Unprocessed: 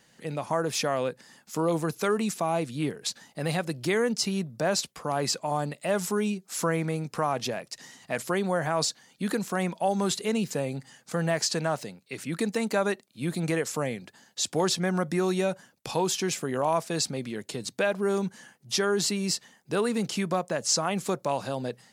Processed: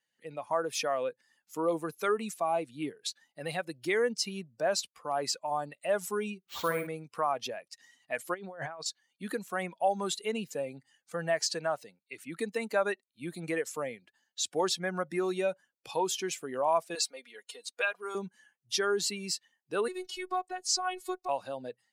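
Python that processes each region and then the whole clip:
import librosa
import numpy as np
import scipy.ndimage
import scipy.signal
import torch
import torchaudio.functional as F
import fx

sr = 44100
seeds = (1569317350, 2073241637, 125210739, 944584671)

y = fx.chain(x, sr, fx.room_flutter(wall_m=11.3, rt60_s=0.58),
    fx.resample_bad(factor=4, down='none', up='hold'), at=(6.4, 6.87))
y = fx.chain(y, sr, fx.over_compress(threshold_db=-31.0, ratio=-0.5),
    fx.lowpass(hz=7000.0, slope=12), at=(8.34, 8.86))
y = fx.chain(y, sr, fx.highpass(hz=530.0, slope=12),
    fx.comb(ms=4.2, depth=0.54), at=(16.95, 18.15))
y = fx.chain(y, sr, fx.peak_eq(hz=4700.0, db=3.5, octaves=0.23),
    fx.robotise(hz=369.0), at=(19.88, 21.29))
y = fx.bin_expand(y, sr, power=1.5)
y = fx.bass_treble(y, sr, bass_db=-15, treble_db=-3)
y = F.gain(torch.from_numpy(y), 1.0).numpy()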